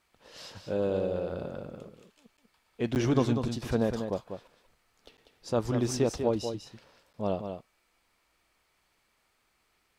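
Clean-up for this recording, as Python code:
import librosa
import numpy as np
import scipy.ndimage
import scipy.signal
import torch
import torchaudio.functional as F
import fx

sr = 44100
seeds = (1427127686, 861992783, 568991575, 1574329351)

y = fx.fix_interpolate(x, sr, at_s=(2.37, 2.95, 5.17, 7.13), length_ms=9.2)
y = fx.fix_echo_inverse(y, sr, delay_ms=194, level_db=-7.5)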